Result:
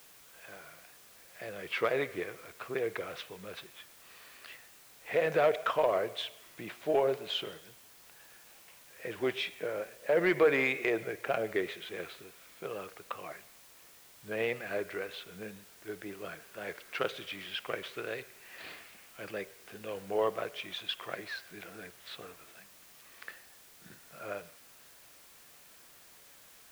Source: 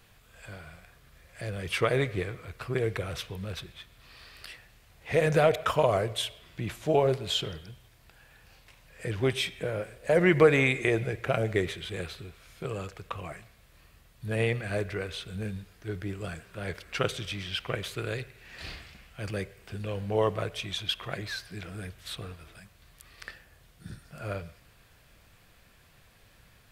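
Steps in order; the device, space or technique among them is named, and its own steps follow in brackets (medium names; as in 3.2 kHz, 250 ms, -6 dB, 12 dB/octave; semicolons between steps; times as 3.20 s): tape answering machine (band-pass 320–3200 Hz; saturation -14 dBFS, distortion -19 dB; wow and flutter; white noise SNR 21 dB); trim -2 dB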